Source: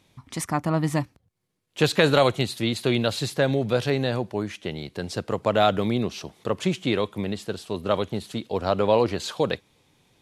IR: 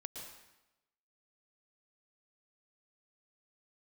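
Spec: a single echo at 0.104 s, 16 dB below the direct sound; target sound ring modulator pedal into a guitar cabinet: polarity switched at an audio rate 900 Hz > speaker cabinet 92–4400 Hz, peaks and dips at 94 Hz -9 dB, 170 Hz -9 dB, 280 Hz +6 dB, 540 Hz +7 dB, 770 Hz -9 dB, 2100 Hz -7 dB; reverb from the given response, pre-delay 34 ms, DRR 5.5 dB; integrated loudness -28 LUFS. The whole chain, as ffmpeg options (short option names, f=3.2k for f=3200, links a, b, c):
-filter_complex "[0:a]aecho=1:1:104:0.158,asplit=2[a][b];[1:a]atrim=start_sample=2205,adelay=34[c];[b][c]afir=irnorm=-1:irlink=0,volume=-3dB[d];[a][d]amix=inputs=2:normalize=0,aeval=exprs='val(0)*sgn(sin(2*PI*900*n/s))':c=same,highpass=92,equalizer=f=94:t=q:w=4:g=-9,equalizer=f=170:t=q:w=4:g=-9,equalizer=f=280:t=q:w=4:g=6,equalizer=f=540:t=q:w=4:g=7,equalizer=f=770:t=q:w=4:g=-9,equalizer=f=2.1k:t=q:w=4:g=-7,lowpass=f=4.4k:w=0.5412,lowpass=f=4.4k:w=1.3066,volume=-4.5dB"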